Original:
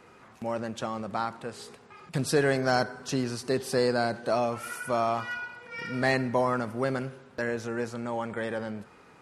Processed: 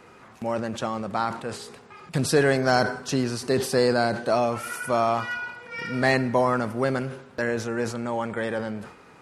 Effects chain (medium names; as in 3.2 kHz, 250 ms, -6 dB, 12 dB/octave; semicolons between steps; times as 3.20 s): decay stretcher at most 99 dB/s; trim +4 dB